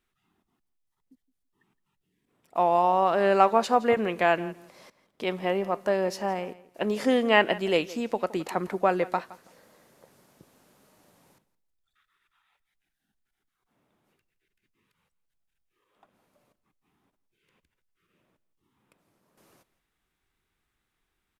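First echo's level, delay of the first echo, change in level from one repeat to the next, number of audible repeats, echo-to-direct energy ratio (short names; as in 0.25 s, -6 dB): -19.0 dB, 0.167 s, -16.0 dB, 2, -19.0 dB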